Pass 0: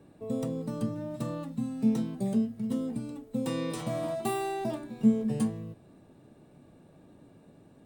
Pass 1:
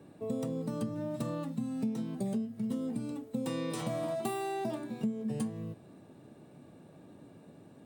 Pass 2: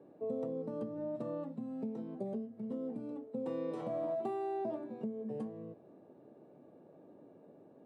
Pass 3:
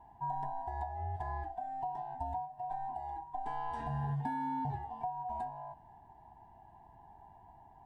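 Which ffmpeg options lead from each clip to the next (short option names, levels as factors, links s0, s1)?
-af "highpass=94,acompressor=threshold=0.0224:ratio=6,volume=1.26"
-af "bandpass=f=500:t=q:w=1.3:csg=0,volume=1.12"
-af "afftfilt=real='real(if(lt(b,1008),b+24*(1-2*mod(floor(b/24),2)),b),0)':imag='imag(if(lt(b,1008),b+24*(1-2*mod(floor(b/24),2)),b),0)':win_size=2048:overlap=0.75,volume=1.12"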